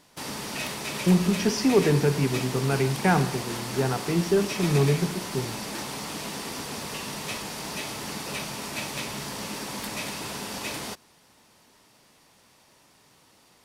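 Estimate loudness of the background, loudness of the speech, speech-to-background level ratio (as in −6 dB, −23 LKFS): −32.5 LKFS, −25.0 LKFS, 7.5 dB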